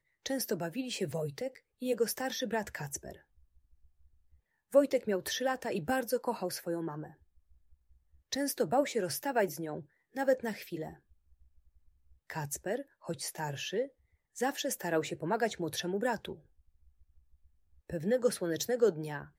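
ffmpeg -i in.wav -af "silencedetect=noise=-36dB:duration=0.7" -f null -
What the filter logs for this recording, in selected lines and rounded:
silence_start: 3.12
silence_end: 4.73 | silence_duration: 1.61
silence_start: 7.03
silence_end: 8.32 | silence_duration: 1.29
silence_start: 10.89
silence_end: 12.30 | silence_duration: 1.41
silence_start: 16.32
silence_end: 17.90 | silence_duration: 1.57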